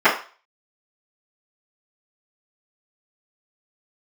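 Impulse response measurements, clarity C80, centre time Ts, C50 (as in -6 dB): 13.5 dB, 24 ms, 8.5 dB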